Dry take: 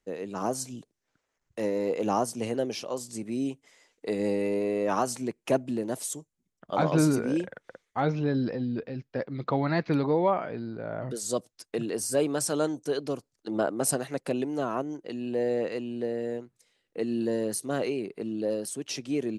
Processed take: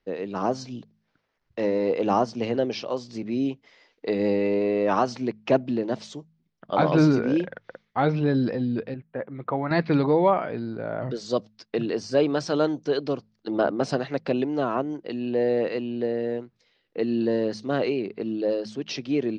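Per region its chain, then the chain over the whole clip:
0:08.94–0:09.71: Gaussian smoothing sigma 3.8 samples + low-shelf EQ 480 Hz −8 dB
whole clip: Butterworth low-pass 5,100 Hz 36 dB per octave; hum removal 53.68 Hz, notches 4; level +4.5 dB

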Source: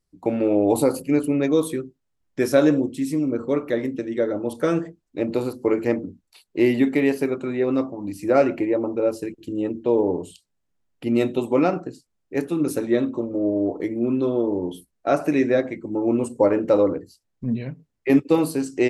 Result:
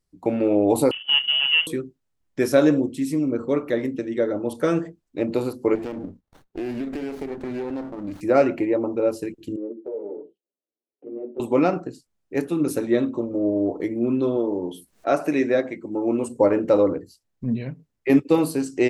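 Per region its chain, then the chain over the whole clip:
0:00.91–0:01.67: running median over 41 samples + voice inversion scrambler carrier 3,200 Hz
0:05.75–0:08.21: downward compressor, threshold −25 dBFS + windowed peak hold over 17 samples
0:09.56–0:11.40: flat-topped band-pass 440 Hz, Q 1.4 + downward compressor 2 to 1, threshold −26 dBFS + string-ensemble chorus
0:14.37–0:16.28: low-shelf EQ 130 Hz −11 dB + upward compression, threshold −37 dBFS
whole clip: no processing

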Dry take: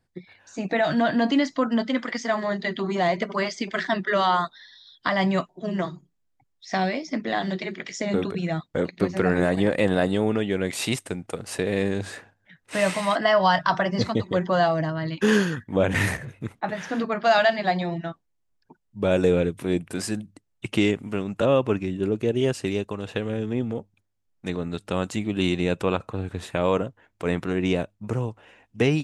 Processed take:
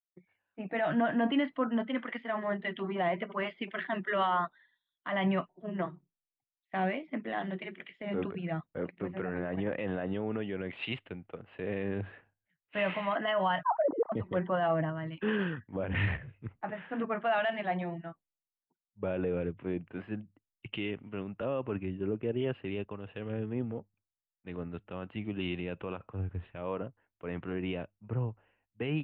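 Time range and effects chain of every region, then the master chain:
0:13.63–0:14.12: three sine waves on the formant tracks + low-pass filter 1,000 Hz 24 dB per octave + low-shelf EQ 410 Hz +7 dB
whole clip: elliptic low-pass filter 3,000 Hz, stop band 50 dB; brickwall limiter −17 dBFS; multiband upward and downward expander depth 100%; level −6 dB

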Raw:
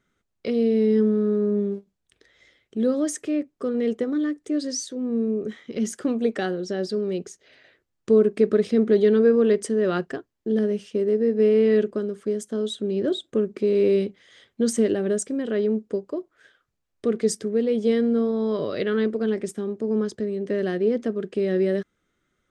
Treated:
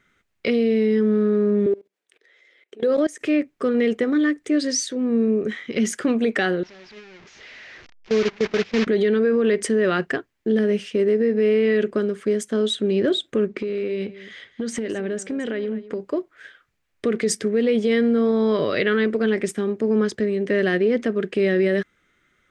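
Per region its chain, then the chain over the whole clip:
0:01.66–0:03.21: high-pass with resonance 410 Hz, resonance Q 2.3 + output level in coarse steps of 23 dB
0:06.63–0:08.87: linear delta modulator 32 kbit/s, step −22 dBFS + noise gate −20 dBFS, range −26 dB
0:13.46–0:16.00: downward compressor 12 to 1, threshold −27 dBFS + high-frequency loss of the air 57 metres + single-tap delay 212 ms −16 dB
whole clip: brickwall limiter −17 dBFS; parametric band 2,100 Hz +10 dB 1.3 octaves; level +4.5 dB

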